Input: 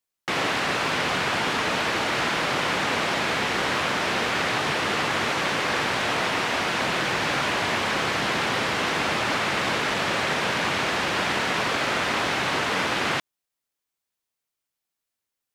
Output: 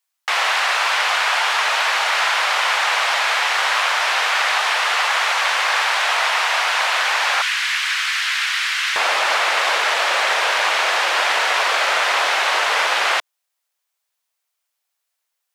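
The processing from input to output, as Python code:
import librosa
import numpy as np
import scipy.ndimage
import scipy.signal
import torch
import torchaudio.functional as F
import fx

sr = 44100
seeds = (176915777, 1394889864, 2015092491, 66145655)

y = fx.highpass(x, sr, hz=fx.steps((0.0, 720.0), (7.42, 1500.0), (8.96, 570.0)), slope=24)
y = y * 10.0 ** (7.5 / 20.0)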